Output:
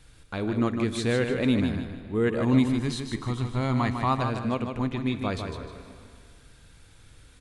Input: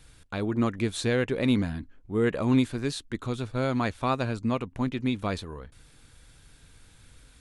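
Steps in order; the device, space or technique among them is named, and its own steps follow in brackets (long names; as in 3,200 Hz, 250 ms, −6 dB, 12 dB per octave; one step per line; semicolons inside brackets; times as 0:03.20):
high-shelf EQ 7,100 Hz −4.5 dB
compressed reverb return (on a send at −7 dB: convolution reverb RT60 2.0 s, pre-delay 20 ms + downward compressor, threshold −33 dBFS, peak gain reduction 15.5 dB)
0:02.53–0:04.22: on the sum: comb filter 1 ms, depth 53%
repeating echo 153 ms, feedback 36%, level −6.5 dB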